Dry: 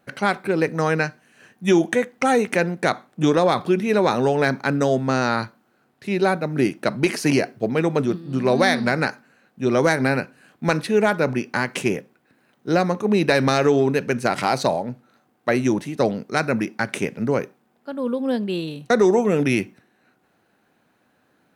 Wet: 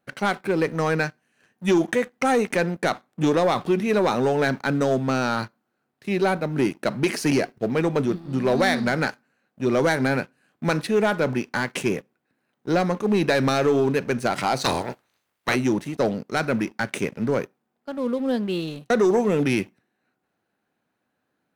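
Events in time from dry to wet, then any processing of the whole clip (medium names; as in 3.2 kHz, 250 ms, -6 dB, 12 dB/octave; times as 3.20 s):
14.63–15.54 s: spectral peaks clipped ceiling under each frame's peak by 24 dB
whole clip: waveshaping leveller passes 2; trim -8.5 dB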